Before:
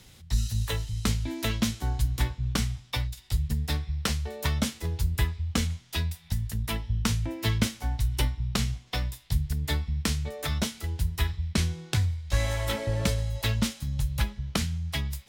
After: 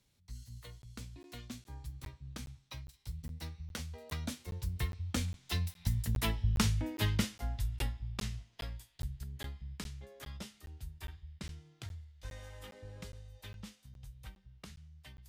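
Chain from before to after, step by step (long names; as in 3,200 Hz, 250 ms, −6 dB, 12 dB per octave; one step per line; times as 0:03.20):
source passing by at 0:06.27, 26 m/s, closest 18 metres
regular buffer underruns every 0.41 s, samples 512, zero, from 0:00.82
level −2 dB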